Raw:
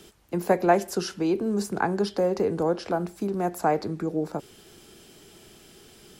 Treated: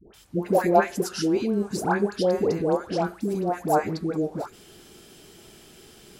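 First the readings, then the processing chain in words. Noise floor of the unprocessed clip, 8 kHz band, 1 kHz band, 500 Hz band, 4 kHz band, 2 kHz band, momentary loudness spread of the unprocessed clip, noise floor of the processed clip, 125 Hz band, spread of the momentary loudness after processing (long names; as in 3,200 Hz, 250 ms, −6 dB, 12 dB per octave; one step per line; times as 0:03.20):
−52 dBFS, +1.5 dB, +1.5 dB, +1.5 dB, +1.5 dB, +1.5 dB, 8 LU, −51 dBFS, +1.5 dB, 8 LU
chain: all-pass dispersion highs, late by 141 ms, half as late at 850 Hz
level +1.5 dB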